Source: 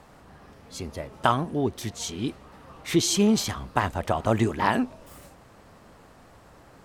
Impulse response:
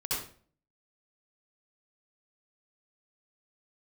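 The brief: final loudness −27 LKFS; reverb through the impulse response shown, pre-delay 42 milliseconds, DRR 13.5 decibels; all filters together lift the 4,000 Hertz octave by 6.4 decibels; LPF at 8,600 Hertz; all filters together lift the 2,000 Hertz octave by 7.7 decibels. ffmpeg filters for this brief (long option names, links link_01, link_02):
-filter_complex "[0:a]lowpass=8600,equalizer=frequency=2000:width_type=o:gain=8.5,equalizer=frequency=4000:width_type=o:gain=5.5,asplit=2[link_01][link_02];[1:a]atrim=start_sample=2205,adelay=42[link_03];[link_02][link_03]afir=irnorm=-1:irlink=0,volume=-19dB[link_04];[link_01][link_04]amix=inputs=2:normalize=0,volume=-3.5dB"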